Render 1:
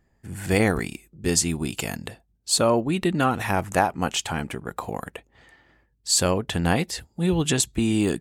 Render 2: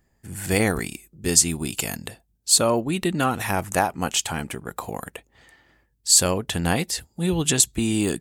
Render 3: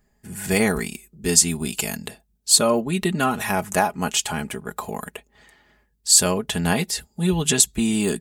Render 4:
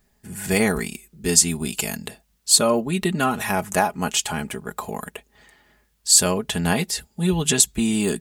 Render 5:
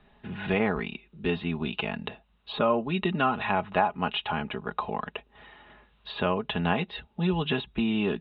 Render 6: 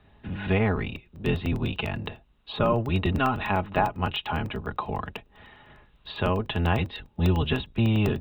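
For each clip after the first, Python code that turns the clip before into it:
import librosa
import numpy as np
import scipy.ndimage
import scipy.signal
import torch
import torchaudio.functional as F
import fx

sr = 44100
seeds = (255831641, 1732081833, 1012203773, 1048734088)

y1 = fx.high_shelf(x, sr, hz=5200.0, db=10.0)
y1 = y1 * 10.0 ** (-1.0 / 20.0)
y2 = y1 + 0.58 * np.pad(y1, (int(4.8 * sr / 1000.0), 0))[:len(y1)]
y3 = fx.quant_dither(y2, sr, seeds[0], bits=12, dither='triangular')
y4 = fx.env_lowpass_down(y3, sr, base_hz=2700.0, full_db=-15.5)
y4 = scipy.signal.sosfilt(scipy.signal.cheby1(6, 6, 3900.0, 'lowpass', fs=sr, output='sos'), y4)
y4 = fx.band_squash(y4, sr, depth_pct=40)
y5 = fx.octave_divider(y4, sr, octaves=1, level_db=3.0)
y5 = fx.buffer_crackle(y5, sr, first_s=0.96, period_s=0.1, block=64, kind='zero')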